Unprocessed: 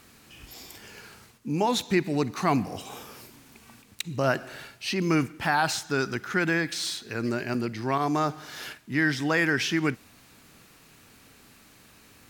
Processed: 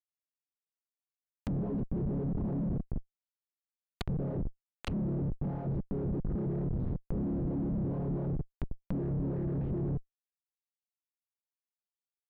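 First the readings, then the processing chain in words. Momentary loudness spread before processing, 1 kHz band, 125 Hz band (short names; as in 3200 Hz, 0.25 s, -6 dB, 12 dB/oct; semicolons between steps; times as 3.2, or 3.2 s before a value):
19 LU, -21.0 dB, +0.5 dB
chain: chord vocoder major triad, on C#3; Schmitt trigger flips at -37.5 dBFS; treble ducked by the level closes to 370 Hz, closed at -32.5 dBFS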